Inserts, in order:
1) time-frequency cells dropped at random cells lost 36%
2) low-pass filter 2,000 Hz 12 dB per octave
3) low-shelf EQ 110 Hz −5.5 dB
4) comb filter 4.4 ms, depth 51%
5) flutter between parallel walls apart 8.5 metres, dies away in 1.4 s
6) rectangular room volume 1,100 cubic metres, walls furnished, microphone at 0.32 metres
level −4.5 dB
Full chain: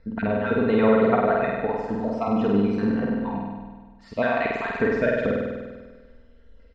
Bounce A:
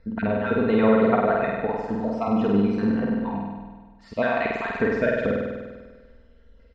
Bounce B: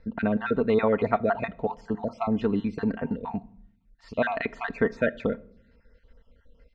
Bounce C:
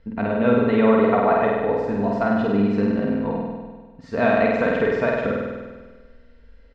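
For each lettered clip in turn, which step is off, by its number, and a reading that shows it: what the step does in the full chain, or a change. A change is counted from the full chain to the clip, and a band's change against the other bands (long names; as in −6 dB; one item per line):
6, change in momentary loudness spread −1 LU
5, echo-to-direct ratio 2.0 dB to −17.5 dB
1, change in crest factor −3.0 dB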